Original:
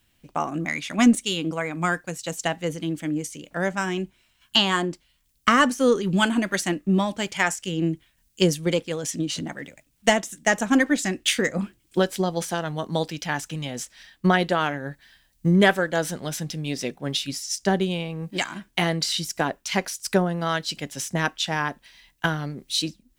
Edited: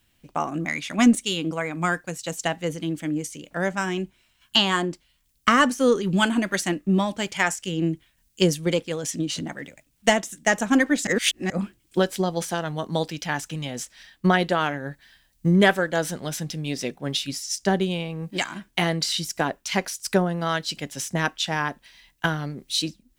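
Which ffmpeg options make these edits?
-filter_complex "[0:a]asplit=3[s0][s1][s2];[s0]atrim=end=11.072[s3];[s1]atrim=start=11.068:end=11.502,asetpts=PTS-STARTPTS,areverse[s4];[s2]atrim=start=11.498[s5];[s3][s4]acrossfade=d=0.004:c1=hsin:c2=hsin[s6];[s6][s5]acrossfade=d=0.004:c1=hsin:c2=hsin"

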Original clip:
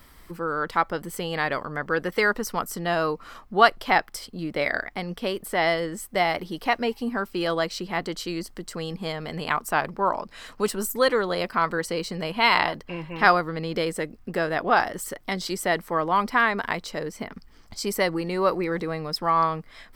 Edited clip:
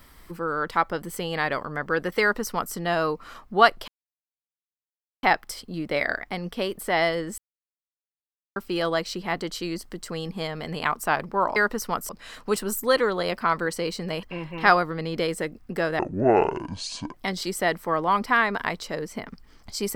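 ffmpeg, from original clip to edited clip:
-filter_complex "[0:a]asplit=9[s0][s1][s2][s3][s4][s5][s6][s7][s8];[s0]atrim=end=3.88,asetpts=PTS-STARTPTS,afade=t=out:st=3.876:d=0.004:c=hsin,apad=pad_dur=1.35[s9];[s1]atrim=start=3.88:end=6.03,asetpts=PTS-STARTPTS,afade=t=in:d=0.004:c=hsin,afade=t=out:st=2.146:d=0.004:c=hsin[s10];[s2]atrim=start=6.03:end=7.21,asetpts=PTS-STARTPTS,volume=0[s11];[s3]atrim=start=7.21:end=10.212,asetpts=PTS-STARTPTS,afade=t=in:d=0.004:c=hsin[s12];[s4]atrim=start=2.208:end=2.742[s13];[s5]atrim=start=10.208:end=12.352[s14];[s6]atrim=start=12.808:end=14.574[s15];[s7]atrim=start=14.57:end=15.18,asetpts=PTS-STARTPTS,asetrate=23373,aresample=44100[s16];[s8]atrim=start=15.176[s17];[s9][s10][s11][s12]concat=n=4:v=0:a=1[s18];[s18][s13]acrossfade=d=0.004:c1=hsin:c2=hsin[s19];[s19][s14]acrossfade=d=0.004:c1=hsin:c2=hsin[s20];[s20][s15]acrossfade=d=0.004:c1=hsin:c2=hsin[s21];[s21][s16]acrossfade=d=0.004:c1=hsin:c2=hsin[s22];[s22][s17]acrossfade=d=0.004:c1=hsin:c2=hsin"

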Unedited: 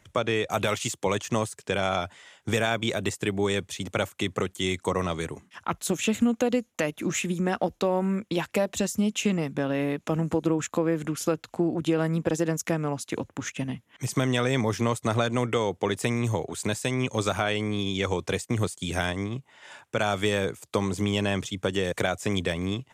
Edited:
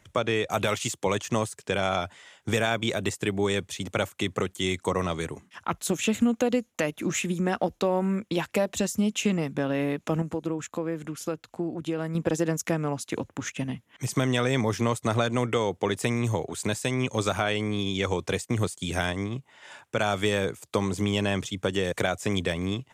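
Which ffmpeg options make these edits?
-filter_complex "[0:a]asplit=3[s0][s1][s2];[s0]atrim=end=10.222[s3];[s1]atrim=start=10.218:end=12.152,asetpts=PTS-STARTPTS,volume=0.531[s4];[s2]atrim=start=12.148[s5];[s3][s4]acrossfade=d=0.004:c1=hsin:c2=hsin[s6];[s6][s5]acrossfade=d=0.004:c1=hsin:c2=hsin"

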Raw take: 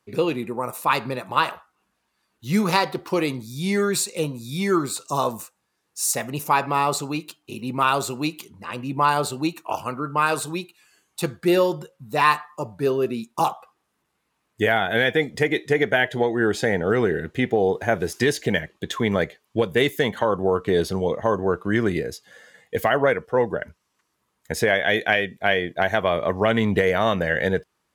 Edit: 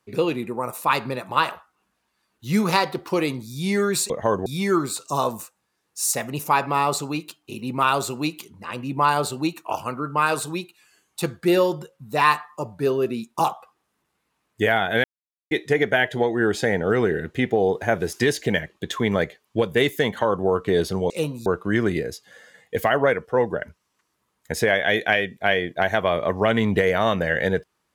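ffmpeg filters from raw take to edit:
-filter_complex "[0:a]asplit=7[s0][s1][s2][s3][s4][s5][s6];[s0]atrim=end=4.102[s7];[s1]atrim=start=21.098:end=21.462[s8];[s2]atrim=start=4.458:end=15.04,asetpts=PTS-STARTPTS,afade=t=out:st=10.578:d=0.004:c=hsin[s9];[s3]atrim=start=15.04:end=15.51,asetpts=PTS-STARTPTS,volume=0[s10];[s4]atrim=start=15.51:end=21.102,asetpts=PTS-STARTPTS,afade=t=in:d=0.004:c=hsin[s11];[s5]atrim=start=4.098:end=4.462[s12];[s6]atrim=start=21.458[s13];[s7][s8]acrossfade=d=0.004:c1=hsin:c2=hsin[s14];[s9][s10][s11]concat=n=3:v=0:a=1[s15];[s14][s15]acrossfade=d=0.004:c1=hsin:c2=hsin[s16];[s16][s12]acrossfade=d=0.004:c1=hsin:c2=hsin[s17];[s17][s13]acrossfade=d=0.004:c1=hsin:c2=hsin"

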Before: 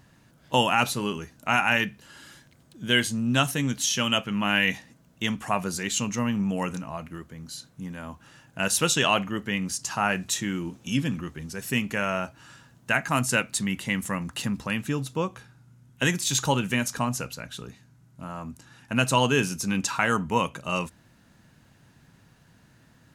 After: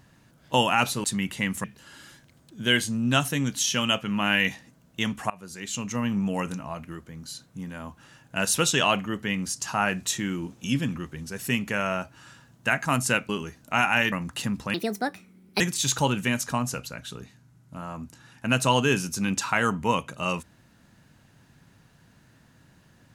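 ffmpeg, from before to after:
-filter_complex "[0:a]asplit=8[s0][s1][s2][s3][s4][s5][s6][s7];[s0]atrim=end=1.042[s8];[s1]atrim=start=13.518:end=14.122[s9];[s2]atrim=start=1.868:end=5.53,asetpts=PTS-STARTPTS,afade=t=out:st=3.658:d=0.004:c=hsin:silence=0.0668344[s10];[s3]atrim=start=5.53:end=13.522,asetpts=PTS-STARTPTS,afade=t=in:d=0.82:silence=0.0668344[s11];[s4]atrim=start=1.038:end=1.872[s12];[s5]atrim=start=14.118:end=14.744[s13];[s6]atrim=start=14.74:end=16.07,asetpts=PTS-STARTPTS,asetrate=67914,aresample=44100,atrim=end_sample=38086,asetpts=PTS-STARTPTS[s14];[s7]atrim=start=16.066[s15];[s8][s9]acrossfade=d=0.004:c1=hsin:c2=hsin[s16];[s10][s11]concat=n=2:v=0:a=1[s17];[s16][s17]acrossfade=d=0.004:c1=hsin:c2=hsin[s18];[s18][s12]acrossfade=d=0.004:c1=hsin:c2=hsin[s19];[s19][s13]acrossfade=d=0.004:c1=hsin:c2=hsin[s20];[s20][s14]acrossfade=d=0.004:c1=hsin:c2=hsin[s21];[s21][s15]acrossfade=d=0.004:c1=hsin:c2=hsin"

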